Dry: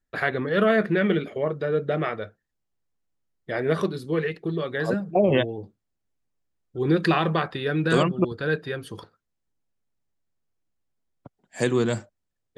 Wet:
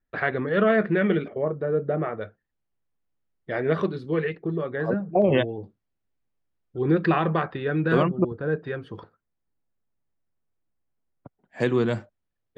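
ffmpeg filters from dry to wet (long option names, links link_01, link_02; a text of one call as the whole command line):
ffmpeg -i in.wav -af "asetnsamples=nb_out_samples=441:pad=0,asendcmd='1.28 lowpass f 1200;2.21 lowpass f 3000;4.35 lowpass f 1600;5.22 lowpass f 3500;6.82 lowpass f 2100;8.1 lowpass f 1100;8.64 lowpass f 2100;11.6 lowpass f 3200',lowpass=2600" out.wav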